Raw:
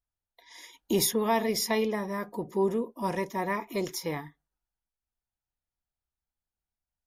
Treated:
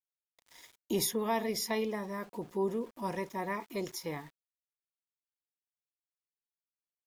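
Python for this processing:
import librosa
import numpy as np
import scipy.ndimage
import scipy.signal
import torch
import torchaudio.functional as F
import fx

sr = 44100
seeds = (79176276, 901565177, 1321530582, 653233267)

y = np.where(np.abs(x) >= 10.0 ** (-47.5 / 20.0), x, 0.0)
y = y * librosa.db_to_amplitude(-5.5)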